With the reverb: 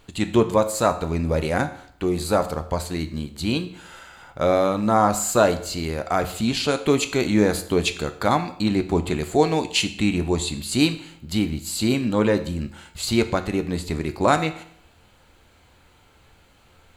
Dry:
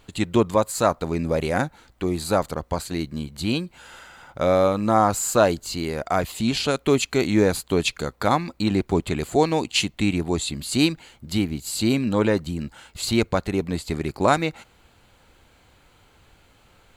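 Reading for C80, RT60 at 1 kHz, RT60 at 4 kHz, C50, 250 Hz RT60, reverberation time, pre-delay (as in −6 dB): 16.0 dB, 0.65 s, 0.60 s, 13.5 dB, 0.65 s, 0.65 s, 11 ms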